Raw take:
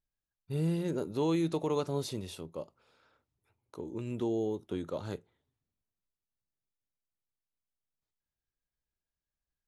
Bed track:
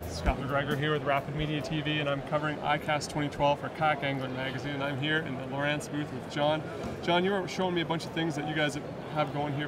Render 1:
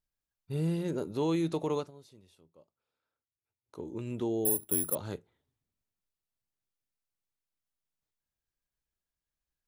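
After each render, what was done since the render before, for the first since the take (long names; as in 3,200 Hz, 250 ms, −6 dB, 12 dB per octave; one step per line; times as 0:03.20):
0:01.75–0:03.79: duck −20 dB, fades 0.16 s
0:04.45–0:04.95: bad sample-rate conversion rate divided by 4×, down filtered, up zero stuff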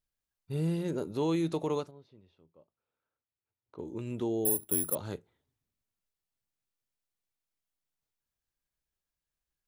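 0:01.91–0:03.79: high-frequency loss of the air 290 metres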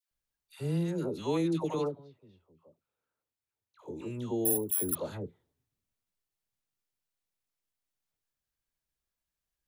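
all-pass dispersion lows, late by 114 ms, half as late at 990 Hz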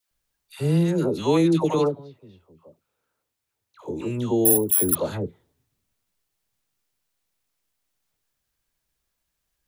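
level +10.5 dB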